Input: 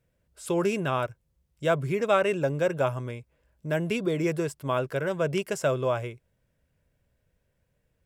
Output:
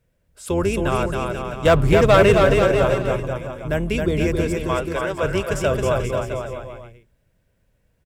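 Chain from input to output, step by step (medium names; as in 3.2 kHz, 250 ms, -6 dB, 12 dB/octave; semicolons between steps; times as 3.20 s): octave divider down 2 oct, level -2 dB; 1.65–2.37 s: waveshaping leveller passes 2; 4.60–5.23 s: frequency weighting A; on a send: bouncing-ball echo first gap 270 ms, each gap 0.8×, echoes 5; on the sum: trim +4 dB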